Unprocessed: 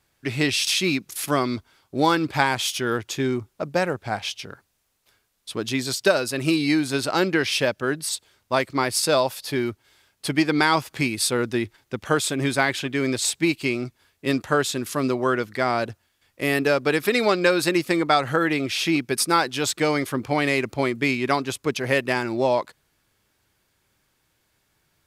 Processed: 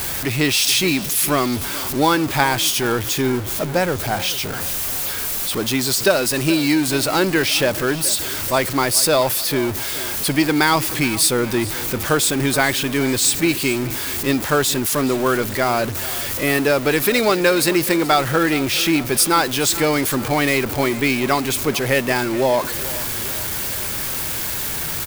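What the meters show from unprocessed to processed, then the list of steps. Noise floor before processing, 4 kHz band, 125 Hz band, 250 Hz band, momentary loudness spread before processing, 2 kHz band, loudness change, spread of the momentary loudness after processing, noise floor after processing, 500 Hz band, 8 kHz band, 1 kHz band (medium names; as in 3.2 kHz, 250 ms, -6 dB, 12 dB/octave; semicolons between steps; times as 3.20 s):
-70 dBFS, +6.0 dB, +5.0 dB, +4.0 dB, 8 LU, +4.0 dB, +5.0 dB, 6 LU, -26 dBFS, +3.5 dB, +9.5 dB, +3.5 dB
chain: jump at every zero crossing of -24.5 dBFS; treble shelf 11 kHz +11.5 dB; feedback delay 427 ms, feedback 56%, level -17 dB; trim +1.5 dB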